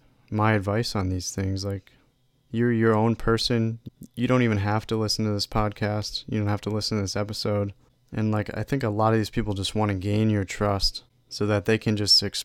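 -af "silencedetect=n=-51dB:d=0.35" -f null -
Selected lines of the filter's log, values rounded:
silence_start: 2.05
silence_end: 2.51 | silence_duration: 0.46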